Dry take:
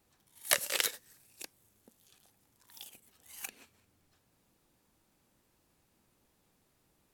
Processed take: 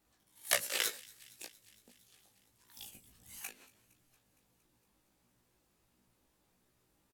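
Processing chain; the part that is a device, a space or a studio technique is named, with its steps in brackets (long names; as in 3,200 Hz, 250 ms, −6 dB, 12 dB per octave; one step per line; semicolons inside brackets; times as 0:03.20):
0:02.77–0:03.39: bass and treble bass +13 dB, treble +3 dB
double-tracked vocal (double-tracking delay 16 ms −7 dB; chorus effect 1.5 Hz, delay 16.5 ms, depth 3.3 ms)
delay with a high-pass on its return 231 ms, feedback 70%, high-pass 2,300 Hz, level −22.5 dB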